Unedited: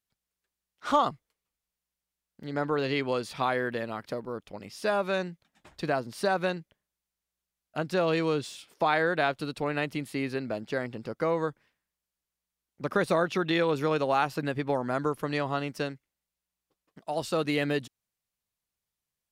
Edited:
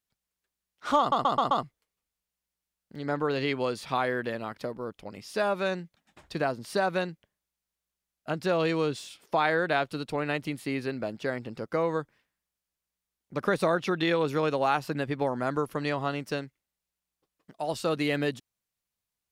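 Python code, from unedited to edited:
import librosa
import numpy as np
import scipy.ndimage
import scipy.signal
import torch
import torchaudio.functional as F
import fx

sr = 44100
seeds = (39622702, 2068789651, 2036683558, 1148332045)

y = fx.edit(x, sr, fx.stutter(start_s=0.99, slice_s=0.13, count=5), tone=tone)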